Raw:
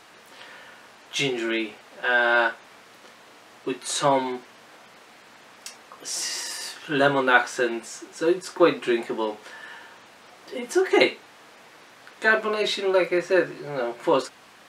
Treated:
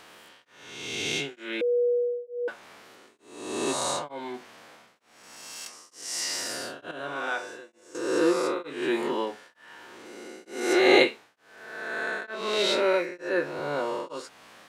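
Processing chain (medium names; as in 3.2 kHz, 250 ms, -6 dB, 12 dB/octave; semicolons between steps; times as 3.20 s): reverse spectral sustain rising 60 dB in 1.55 s; 1.61–2.48 s: bleep 484 Hz -16.5 dBFS; 6.91–7.95 s: feedback comb 100 Hz, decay 1.5 s, harmonics all, mix 80%; tremolo of two beating tones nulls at 1.1 Hz; trim -3.5 dB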